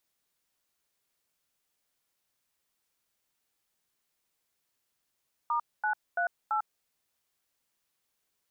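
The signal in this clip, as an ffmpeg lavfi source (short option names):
-f lavfi -i "aevalsrc='0.0376*clip(min(mod(t,0.336),0.098-mod(t,0.336))/0.002,0,1)*(eq(floor(t/0.336),0)*(sin(2*PI*941*mod(t,0.336))+sin(2*PI*1209*mod(t,0.336)))+eq(floor(t/0.336),1)*(sin(2*PI*852*mod(t,0.336))+sin(2*PI*1477*mod(t,0.336)))+eq(floor(t/0.336),2)*(sin(2*PI*697*mod(t,0.336))+sin(2*PI*1477*mod(t,0.336)))+eq(floor(t/0.336),3)*(sin(2*PI*852*mod(t,0.336))+sin(2*PI*1336*mod(t,0.336))))':d=1.344:s=44100"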